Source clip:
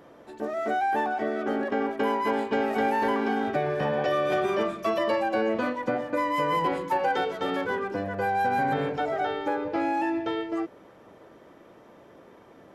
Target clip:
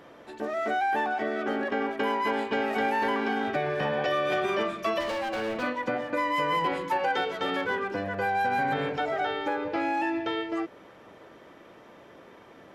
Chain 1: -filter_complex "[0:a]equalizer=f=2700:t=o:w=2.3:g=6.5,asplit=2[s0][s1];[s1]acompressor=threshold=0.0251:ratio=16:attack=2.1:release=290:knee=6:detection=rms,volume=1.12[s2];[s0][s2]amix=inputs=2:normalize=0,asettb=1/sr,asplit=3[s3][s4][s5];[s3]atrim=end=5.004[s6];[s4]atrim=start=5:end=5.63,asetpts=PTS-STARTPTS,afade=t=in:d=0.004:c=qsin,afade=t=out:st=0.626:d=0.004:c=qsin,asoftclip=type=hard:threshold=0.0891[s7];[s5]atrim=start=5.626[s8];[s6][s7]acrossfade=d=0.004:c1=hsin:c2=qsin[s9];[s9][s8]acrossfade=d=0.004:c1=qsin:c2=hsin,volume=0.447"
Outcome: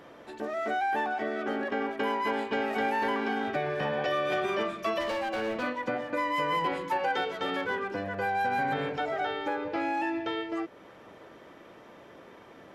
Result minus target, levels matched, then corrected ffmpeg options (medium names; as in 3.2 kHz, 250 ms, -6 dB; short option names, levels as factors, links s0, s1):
compression: peak gain reduction +8 dB
-filter_complex "[0:a]equalizer=f=2700:t=o:w=2.3:g=6.5,asplit=2[s0][s1];[s1]acompressor=threshold=0.0668:ratio=16:attack=2.1:release=290:knee=6:detection=rms,volume=1.12[s2];[s0][s2]amix=inputs=2:normalize=0,asettb=1/sr,asplit=3[s3][s4][s5];[s3]atrim=end=5.004[s6];[s4]atrim=start=5:end=5.63,asetpts=PTS-STARTPTS,afade=t=in:d=0.004:c=qsin,afade=t=out:st=0.626:d=0.004:c=qsin,asoftclip=type=hard:threshold=0.0891[s7];[s5]atrim=start=5.626[s8];[s6][s7]acrossfade=d=0.004:c1=hsin:c2=qsin[s9];[s9][s8]acrossfade=d=0.004:c1=qsin:c2=hsin,volume=0.447"